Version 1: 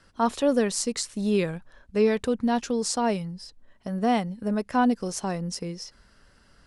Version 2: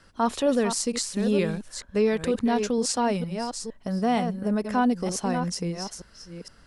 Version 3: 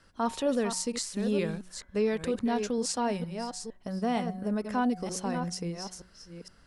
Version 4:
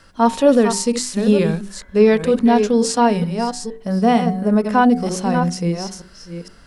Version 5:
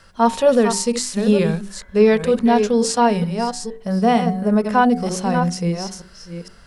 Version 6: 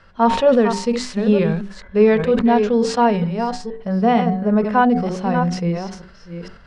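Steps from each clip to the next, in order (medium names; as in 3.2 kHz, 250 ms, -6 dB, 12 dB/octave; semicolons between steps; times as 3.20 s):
chunks repeated in reverse 463 ms, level -9 dB; in parallel at +1.5 dB: peak limiter -20.5 dBFS, peak gain reduction 10 dB; on the sum: trim -4.5 dB
de-hum 183.7 Hz, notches 12; trim -5 dB
hum notches 50/100/150/200/250/300/350/400/450 Hz; harmonic-percussive split harmonic +9 dB; trim +6.5 dB
peaking EQ 290 Hz -14.5 dB 0.22 oct
low-pass 3 kHz 12 dB/octave; decay stretcher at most 85 dB/s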